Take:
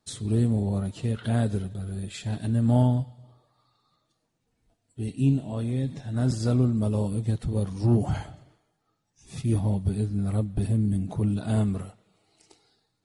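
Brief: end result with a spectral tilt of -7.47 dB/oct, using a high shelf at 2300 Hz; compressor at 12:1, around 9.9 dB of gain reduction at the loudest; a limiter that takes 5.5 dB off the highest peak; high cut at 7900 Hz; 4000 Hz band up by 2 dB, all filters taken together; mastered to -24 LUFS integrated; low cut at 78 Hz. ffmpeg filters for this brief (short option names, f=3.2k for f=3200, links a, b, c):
-af "highpass=78,lowpass=7.9k,highshelf=f=2.3k:g=-5.5,equalizer=f=4k:t=o:g=7.5,acompressor=threshold=-27dB:ratio=12,volume=11dB,alimiter=limit=-14.5dB:level=0:latency=1"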